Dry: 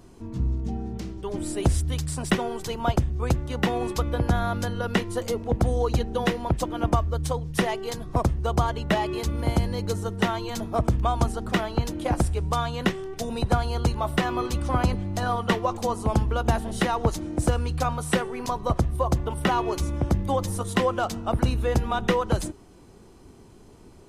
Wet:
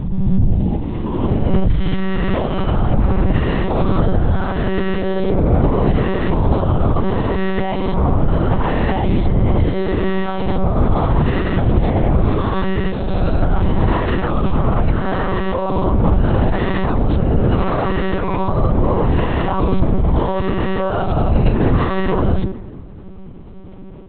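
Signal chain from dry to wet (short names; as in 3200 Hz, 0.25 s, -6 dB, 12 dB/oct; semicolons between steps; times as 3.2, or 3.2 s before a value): spectral swells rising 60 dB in 1.60 s; limiter -16.5 dBFS, peak gain reduction 10.5 dB; tilt -2 dB/oct; pre-echo 0.179 s -13 dB; reverb RT60 2.1 s, pre-delay 6 ms, DRR 14 dB; monotone LPC vocoder at 8 kHz 190 Hz; gain +4 dB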